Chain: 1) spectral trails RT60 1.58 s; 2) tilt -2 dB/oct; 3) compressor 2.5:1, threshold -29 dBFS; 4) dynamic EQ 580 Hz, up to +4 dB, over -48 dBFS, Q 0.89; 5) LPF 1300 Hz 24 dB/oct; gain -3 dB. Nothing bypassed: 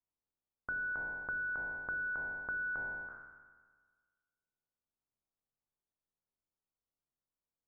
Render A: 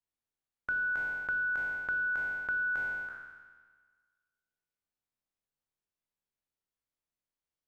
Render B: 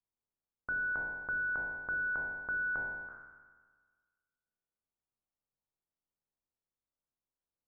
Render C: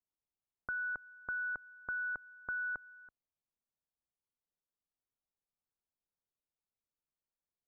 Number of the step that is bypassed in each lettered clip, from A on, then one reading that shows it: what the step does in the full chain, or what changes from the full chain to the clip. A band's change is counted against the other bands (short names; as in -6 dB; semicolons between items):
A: 5, 2 kHz band +6.0 dB; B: 3, mean gain reduction 1.5 dB; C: 1, momentary loudness spread change -3 LU